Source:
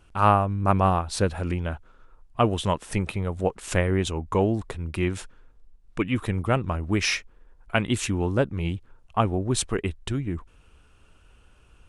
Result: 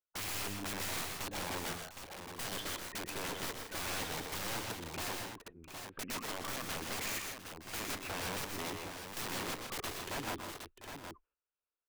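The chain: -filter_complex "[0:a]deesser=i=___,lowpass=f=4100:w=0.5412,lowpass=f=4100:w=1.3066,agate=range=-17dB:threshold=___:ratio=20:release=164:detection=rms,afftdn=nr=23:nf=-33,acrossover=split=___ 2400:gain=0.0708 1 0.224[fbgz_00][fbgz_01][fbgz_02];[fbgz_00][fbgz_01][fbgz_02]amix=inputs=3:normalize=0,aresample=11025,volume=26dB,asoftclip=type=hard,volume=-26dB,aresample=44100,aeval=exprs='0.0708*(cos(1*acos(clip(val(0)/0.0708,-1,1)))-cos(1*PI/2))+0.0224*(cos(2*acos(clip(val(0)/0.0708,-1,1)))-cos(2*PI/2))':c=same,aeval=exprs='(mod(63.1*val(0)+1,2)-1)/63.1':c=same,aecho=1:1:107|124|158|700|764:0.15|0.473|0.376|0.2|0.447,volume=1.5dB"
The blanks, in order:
0.75, -47dB, 350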